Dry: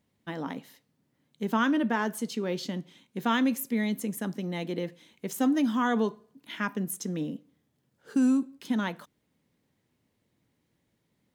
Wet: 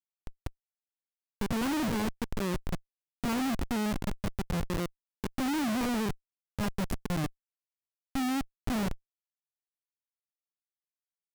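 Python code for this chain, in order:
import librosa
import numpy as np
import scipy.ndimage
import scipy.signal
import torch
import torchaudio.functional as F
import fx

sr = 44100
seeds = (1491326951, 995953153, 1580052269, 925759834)

y = fx.spec_steps(x, sr, hold_ms=50)
y = fx.cheby_harmonics(y, sr, harmonics=(4, 5), levels_db=(-43, -26), full_scale_db=-14.0)
y = fx.schmitt(y, sr, flips_db=-27.5)
y = y * librosa.db_to_amplitude(1.5)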